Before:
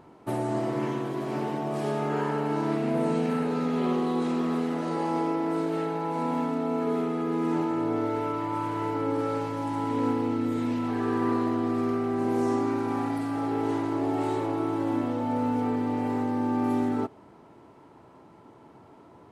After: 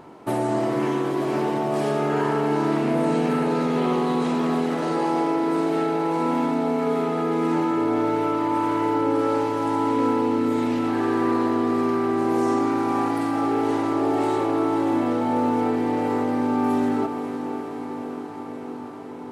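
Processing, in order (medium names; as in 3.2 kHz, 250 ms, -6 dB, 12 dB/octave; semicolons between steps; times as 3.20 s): peaking EQ 63 Hz -7.5 dB 2.4 oct; echo that smears into a reverb 517 ms, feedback 75%, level -11.5 dB; in parallel at 0 dB: peak limiter -27 dBFS, peak gain reduction 11 dB; on the sum: trim +2.5 dB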